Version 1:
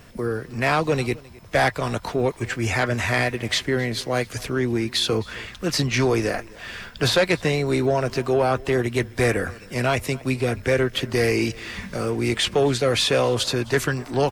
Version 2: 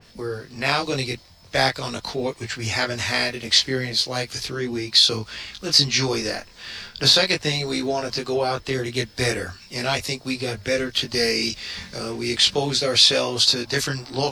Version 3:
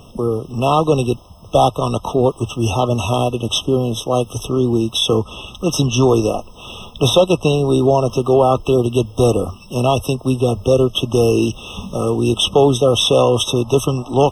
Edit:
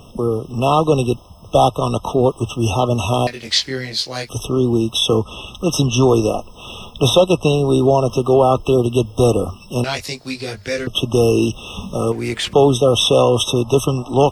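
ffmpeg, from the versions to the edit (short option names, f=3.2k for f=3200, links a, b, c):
-filter_complex "[1:a]asplit=2[a][b];[2:a]asplit=4[c][d][e][f];[c]atrim=end=3.272[g];[a]atrim=start=3.268:end=4.292[h];[d]atrim=start=4.288:end=9.842[i];[b]atrim=start=9.838:end=10.872[j];[e]atrim=start=10.868:end=12.122[k];[0:a]atrim=start=12.118:end=12.532[l];[f]atrim=start=12.528[m];[g][h]acrossfade=d=0.004:c1=hsin:c2=hsin[n];[n][i]acrossfade=d=0.004:c1=hsin:c2=hsin[o];[o][j]acrossfade=d=0.004:c1=hsin:c2=hsin[p];[p][k]acrossfade=d=0.004:c1=hsin:c2=hsin[q];[q][l]acrossfade=d=0.004:c1=hsin:c2=hsin[r];[r][m]acrossfade=d=0.004:c1=hsin:c2=hsin"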